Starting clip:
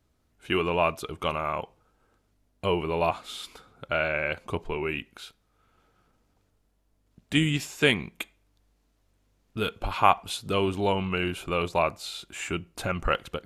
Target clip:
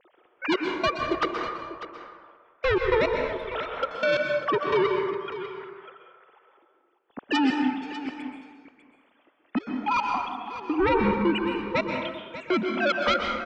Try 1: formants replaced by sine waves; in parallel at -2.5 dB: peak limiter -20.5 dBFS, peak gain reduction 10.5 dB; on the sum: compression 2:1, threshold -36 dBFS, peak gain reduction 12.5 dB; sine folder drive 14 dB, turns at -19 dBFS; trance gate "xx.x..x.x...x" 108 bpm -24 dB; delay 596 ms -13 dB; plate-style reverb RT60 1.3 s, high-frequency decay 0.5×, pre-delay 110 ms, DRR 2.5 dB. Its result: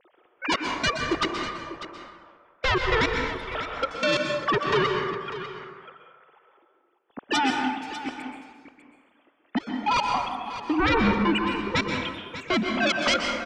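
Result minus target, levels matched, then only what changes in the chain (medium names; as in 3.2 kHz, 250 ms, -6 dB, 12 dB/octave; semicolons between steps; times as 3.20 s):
compression: peak gain reduction -4 dB
change: compression 2:1, threshold -44 dBFS, peak gain reduction 16.5 dB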